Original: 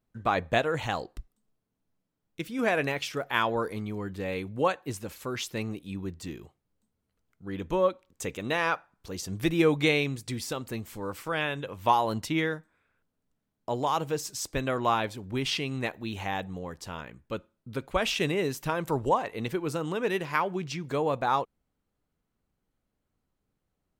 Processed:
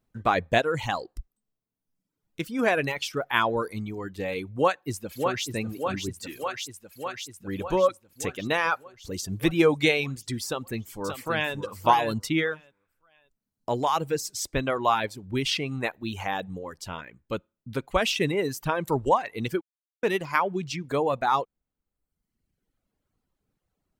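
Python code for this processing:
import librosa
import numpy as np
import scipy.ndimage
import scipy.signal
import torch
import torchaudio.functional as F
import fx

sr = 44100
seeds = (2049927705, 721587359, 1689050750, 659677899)

y = fx.echo_throw(x, sr, start_s=4.55, length_s=0.92, ms=600, feedback_pct=75, wet_db=-5.0)
y = fx.tilt_shelf(y, sr, db=-4.5, hz=650.0, at=(6.23, 7.48))
y = fx.echo_throw(y, sr, start_s=10.46, length_s=1.09, ms=580, feedback_pct=20, wet_db=-5.5)
y = fx.edit(y, sr, fx.silence(start_s=19.61, length_s=0.42), tone=tone)
y = fx.dereverb_blind(y, sr, rt60_s=1.1)
y = F.gain(torch.from_numpy(y), 3.5).numpy()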